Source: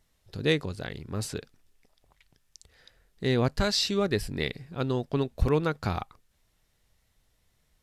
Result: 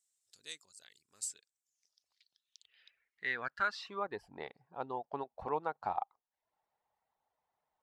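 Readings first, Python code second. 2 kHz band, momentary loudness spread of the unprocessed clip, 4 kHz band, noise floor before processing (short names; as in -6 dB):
-4.5 dB, 11 LU, -18.0 dB, -72 dBFS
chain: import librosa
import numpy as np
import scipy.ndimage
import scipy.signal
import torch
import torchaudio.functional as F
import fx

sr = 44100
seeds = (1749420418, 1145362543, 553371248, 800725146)

y = fx.filter_sweep_bandpass(x, sr, from_hz=7800.0, to_hz=840.0, start_s=1.58, end_s=4.23, q=4.7)
y = fx.dereverb_blind(y, sr, rt60_s=0.53)
y = F.gain(torch.from_numpy(y), 4.5).numpy()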